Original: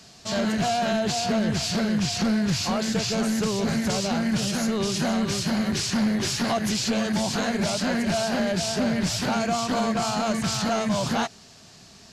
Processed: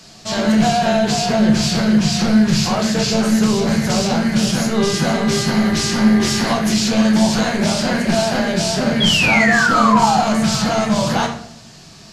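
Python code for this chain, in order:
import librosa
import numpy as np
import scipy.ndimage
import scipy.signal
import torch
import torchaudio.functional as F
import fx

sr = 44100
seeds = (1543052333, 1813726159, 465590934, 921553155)

y = fx.dmg_buzz(x, sr, base_hz=400.0, harmonics=5, level_db=-36.0, tilt_db=-3, odd_only=False, at=(4.75, 6.47), fade=0.02)
y = fx.spec_paint(y, sr, seeds[0], shape='fall', start_s=9.0, length_s=1.21, low_hz=710.0, high_hz=3400.0, level_db=-23.0)
y = fx.room_shoebox(y, sr, seeds[1], volume_m3=110.0, walls='mixed', distance_m=0.69)
y = F.gain(torch.from_numpy(y), 5.0).numpy()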